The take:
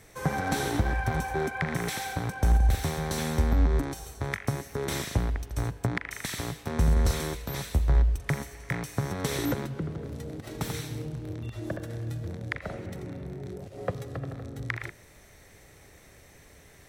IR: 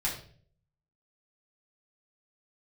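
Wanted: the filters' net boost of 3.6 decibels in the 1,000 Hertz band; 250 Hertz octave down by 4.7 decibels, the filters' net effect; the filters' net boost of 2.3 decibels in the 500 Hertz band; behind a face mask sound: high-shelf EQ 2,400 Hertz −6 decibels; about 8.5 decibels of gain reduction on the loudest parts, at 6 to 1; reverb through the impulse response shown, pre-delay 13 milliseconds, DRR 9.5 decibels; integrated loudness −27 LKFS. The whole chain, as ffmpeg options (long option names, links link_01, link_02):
-filter_complex "[0:a]equalizer=frequency=250:width_type=o:gain=-9,equalizer=frequency=500:width_type=o:gain=5,equalizer=frequency=1000:width_type=o:gain=4.5,acompressor=threshold=-27dB:ratio=6,asplit=2[link_01][link_02];[1:a]atrim=start_sample=2205,adelay=13[link_03];[link_02][link_03]afir=irnorm=-1:irlink=0,volume=-15.5dB[link_04];[link_01][link_04]amix=inputs=2:normalize=0,highshelf=frequency=2400:gain=-6,volume=7dB"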